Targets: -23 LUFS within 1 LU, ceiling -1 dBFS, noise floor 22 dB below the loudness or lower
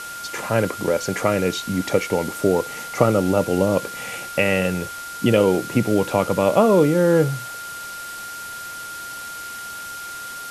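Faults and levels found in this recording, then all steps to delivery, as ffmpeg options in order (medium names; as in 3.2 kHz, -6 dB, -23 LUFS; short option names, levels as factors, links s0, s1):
steady tone 1.4 kHz; tone level -32 dBFS; noise floor -34 dBFS; noise floor target -43 dBFS; loudness -20.5 LUFS; peak level -2.5 dBFS; loudness target -23.0 LUFS
-> -af "bandreject=f=1400:w=30"
-af "afftdn=nr=9:nf=-34"
-af "volume=0.75"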